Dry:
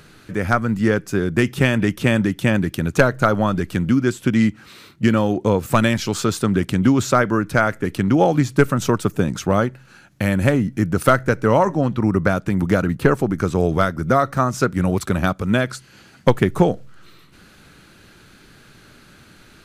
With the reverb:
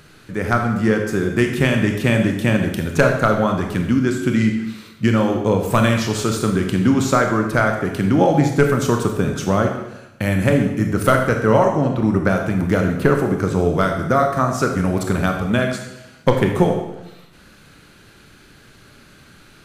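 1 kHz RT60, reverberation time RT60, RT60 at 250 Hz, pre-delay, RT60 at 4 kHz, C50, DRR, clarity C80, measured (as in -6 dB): 0.95 s, 0.95 s, 0.95 s, 23 ms, 0.85 s, 5.5 dB, 3.0 dB, 8.0 dB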